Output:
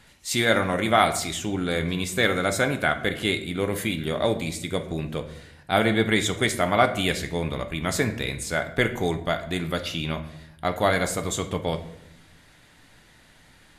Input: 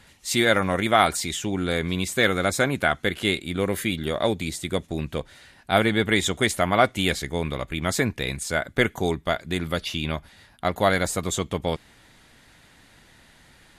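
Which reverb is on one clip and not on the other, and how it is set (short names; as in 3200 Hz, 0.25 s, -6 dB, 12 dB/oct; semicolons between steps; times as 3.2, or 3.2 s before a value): shoebox room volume 200 m³, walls mixed, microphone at 0.4 m; gain -1.5 dB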